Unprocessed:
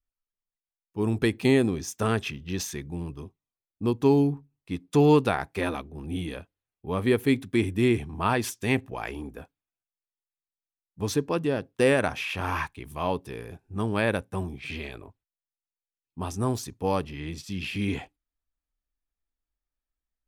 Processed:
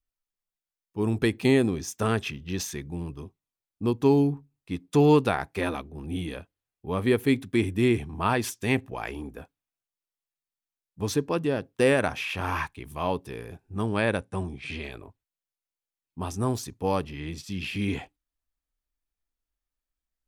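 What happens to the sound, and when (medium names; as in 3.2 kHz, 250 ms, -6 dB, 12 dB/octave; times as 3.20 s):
13.86–14.84 s: brick-wall FIR low-pass 11 kHz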